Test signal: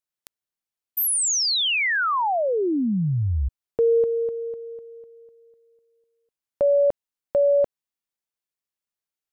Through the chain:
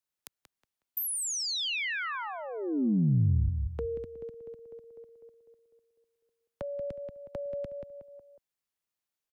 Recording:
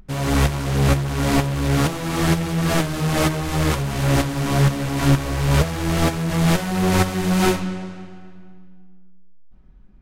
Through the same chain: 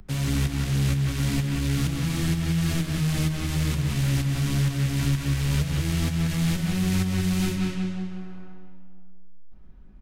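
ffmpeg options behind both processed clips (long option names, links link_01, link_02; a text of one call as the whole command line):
ffmpeg -i in.wav -filter_complex "[0:a]asplit=2[link_01][link_02];[link_02]adelay=183,lowpass=frequency=2900:poles=1,volume=-6dB,asplit=2[link_03][link_04];[link_04]adelay=183,lowpass=frequency=2900:poles=1,volume=0.3,asplit=2[link_05][link_06];[link_06]adelay=183,lowpass=frequency=2900:poles=1,volume=0.3,asplit=2[link_07][link_08];[link_08]adelay=183,lowpass=frequency=2900:poles=1,volume=0.3[link_09];[link_01][link_03][link_05][link_07][link_09]amix=inputs=5:normalize=0,acrossover=split=100|260|1800[link_10][link_11][link_12][link_13];[link_10]acompressor=threshold=-30dB:ratio=4[link_14];[link_11]acompressor=threshold=-24dB:ratio=4[link_15];[link_12]acompressor=threshold=-47dB:ratio=4[link_16];[link_13]acompressor=threshold=-34dB:ratio=4[link_17];[link_14][link_15][link_16][link_17]amix=inputs=4:normalize=0" out.wav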